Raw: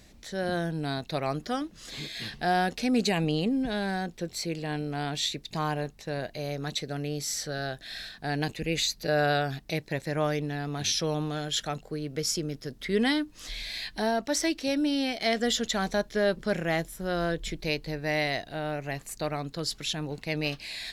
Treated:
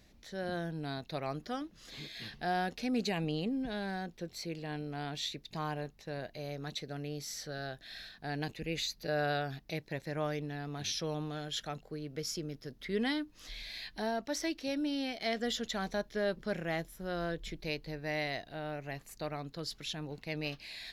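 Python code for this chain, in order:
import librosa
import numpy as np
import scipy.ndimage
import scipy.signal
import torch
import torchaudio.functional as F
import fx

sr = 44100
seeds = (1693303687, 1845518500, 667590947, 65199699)

y = fx.peak_eq(x, sr, hz=8400.0, db=-8.0, octaves=0.54)
y = y * librosa.db_to_amplitude(-7.5)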